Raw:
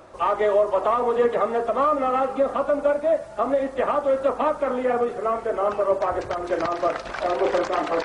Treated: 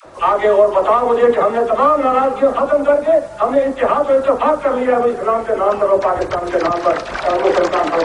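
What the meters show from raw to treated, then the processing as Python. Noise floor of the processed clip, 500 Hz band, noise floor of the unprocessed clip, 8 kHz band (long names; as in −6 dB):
−29 dBFS, +8.0 dB, −38 dBFS, can't be measured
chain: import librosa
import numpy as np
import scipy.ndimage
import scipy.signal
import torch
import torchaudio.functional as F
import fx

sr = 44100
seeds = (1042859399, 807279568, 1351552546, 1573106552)

y = fx.dispersion(x, sr, late='lows', ms=57.0, hz=580.0)
y = F.gain(torch.from_numpy(y), 8.0).numpy()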